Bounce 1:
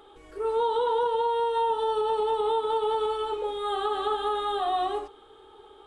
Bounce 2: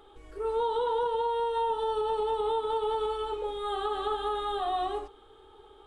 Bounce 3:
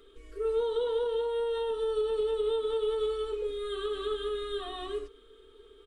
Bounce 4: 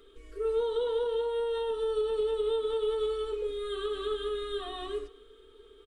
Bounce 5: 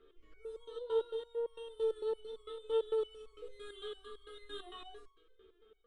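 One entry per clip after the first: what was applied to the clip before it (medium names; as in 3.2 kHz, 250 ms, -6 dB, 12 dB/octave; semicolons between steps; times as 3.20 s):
bass shelf 86 Hz +11.5 dB; trim -3.5 dB
static phaser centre 340 Hz, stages 4; comb 4.4 ms, depth 42%
delay 248 ms -24 dB
level-controlled noise filter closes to 2.4 kHz, open at -30.5 dBFS; resonator arpeggio 8.9 Hz 75–1100 Hz; trim +2.5 dB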